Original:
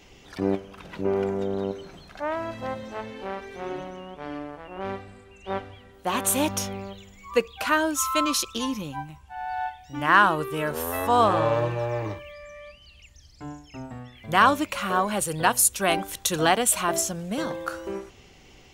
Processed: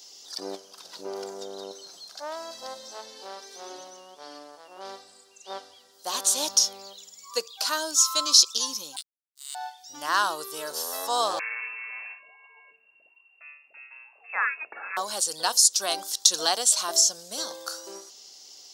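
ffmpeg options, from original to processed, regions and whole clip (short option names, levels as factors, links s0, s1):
-filter_complex "[0:a]asettb=1/sr,asplit=3[s0][s1][s2];[s0]atrim=end=8.964[s3];[s1]atrim=start=8.96:end=9.55,asetpts=PTS-STARTPTS,afade=t=in:d=0.004:c=qsin,afade=t=out:st=0.586:d=0.004:c=qsin,lowpass=f=3100:t=q:w=0.5098,lowpass=f=3100:t=q:w=0.6013,lowpass=f=3100:t=q:w=0.9,lowpass=f=3100:t=q:w=2.563,afreqshift=-3700,highpass=f=460:p=1,acrusher=bits=3:mix=0:aa=0.5[s4];[s2]atrim=start=9.546[s5];[s3][s4]acrossfade=d=0.004:c1=hsin:c2=qsin[s6];[s6][s5]acrossfade=d=0.004:c1=qsin:c2=hsin,asettb=1/sr,asplit=3[s7][s8][s9];[s7]atrim=end=11.394[s10];[s8]atrim=start=11.39:end=14.97,asetpts=PTS-STARTPTS,afade=t=in:d=0.004:c=qsin,afade=t=out:st=3.576:d=0.004:c=qsin,lowpass=f=2400:t=q:w=0.5098,lowpass=f=2400:t=q:w=0.6013,lowpass=f=2400:t=q:w=0.9,lowpass=f=2400:t=q:w=2.563,afreqshift=-2800,bandreject=f=50:t=h:w=6,bandreject=f=100:t=h:w=6,bandreject=f=150:t=h:w=6,bandreject=f=200:t=h:w=6,bandreject=f=250:t=h:w=6,bandreject=f=300:t=h:w=6,bandreject=f=350:t=h:w=6,bandreject=f=400:t=h:w=6,bandreject=f=450:t=h:w=6[s11];[s9]atrim=start=14.966[s12];[s10][s11]acrossfade=d=0.004:c1=hsin:c2=qsin[s13];[s13][s12]acrossfade=d=0.004:c1=qsin:c2=hsin,highpass=530,acrossover=split=6900[s14][s15];[s15]acompressor=threshold=0.00631:ratio=4:attack=1:release=60[s16];[s14][s16]amix=inputs=2:normalize=0,highshelf=f=3400:t=q:w=3:g=13,volume=0.596"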